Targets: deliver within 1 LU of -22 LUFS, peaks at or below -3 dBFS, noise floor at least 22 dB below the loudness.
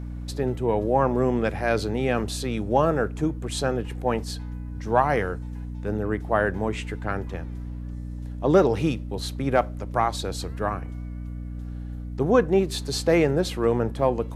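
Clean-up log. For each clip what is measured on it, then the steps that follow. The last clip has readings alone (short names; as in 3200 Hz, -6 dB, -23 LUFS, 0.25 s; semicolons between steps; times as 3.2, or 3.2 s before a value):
hum 60 Hz; harmonics up to 300 Hz; hum level -31 dBFS; loudness -25.0 LUFS; peak -6.0 dBFS; loudness target -22.0 LUFS
-> notches 60/120/180/240/300 Hz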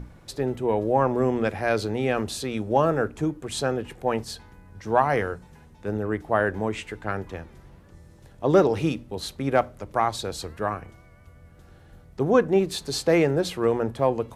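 hum none; loudness -25.0 LUFS; peak -6.5 dBFS; loudness target -22.0 LUFS
-> gain +3 dB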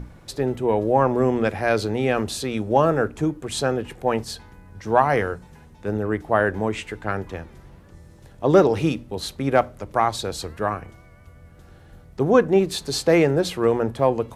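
loudness -22.0 LUFS; peak -3.5 dBFS; noise floor -48 dBFS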